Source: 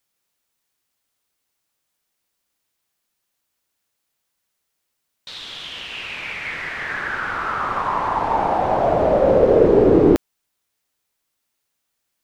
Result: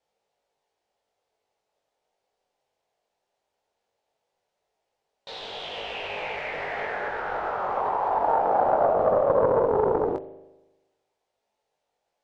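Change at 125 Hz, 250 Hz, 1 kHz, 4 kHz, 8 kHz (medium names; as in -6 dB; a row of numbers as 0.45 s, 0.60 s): -12.5 dB, -15.5 dB, -3.0 dB, -6.0 dB, no reading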